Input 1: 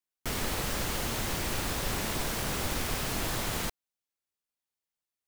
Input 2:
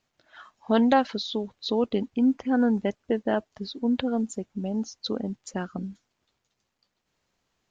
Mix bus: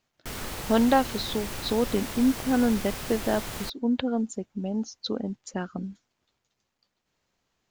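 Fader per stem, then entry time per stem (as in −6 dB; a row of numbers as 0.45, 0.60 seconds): −3.5, −0.5 decibels; 0.00, 0.00 seconds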